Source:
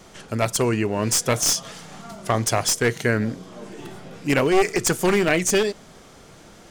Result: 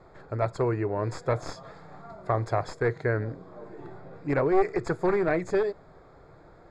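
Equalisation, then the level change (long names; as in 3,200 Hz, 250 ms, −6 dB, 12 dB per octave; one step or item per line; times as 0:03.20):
moving average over 15 samples
high-frequency loss of the air 64 metres
parametric band 220 Hz −14.5 dB 0.44 octaves
−2.5 dB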